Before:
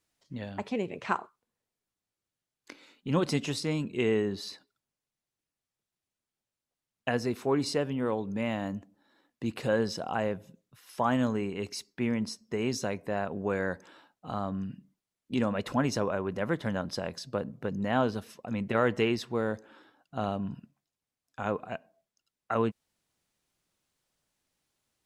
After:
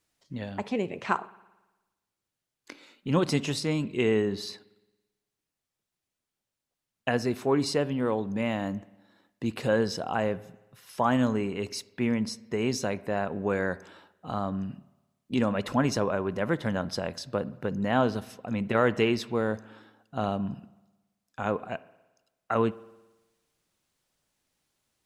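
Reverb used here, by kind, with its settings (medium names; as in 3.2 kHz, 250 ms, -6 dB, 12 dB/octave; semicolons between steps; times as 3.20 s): spring tank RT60 1.1 s, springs 55 ms, chirp 30 ms, DRR 19.5 dB; trim +2.5 dB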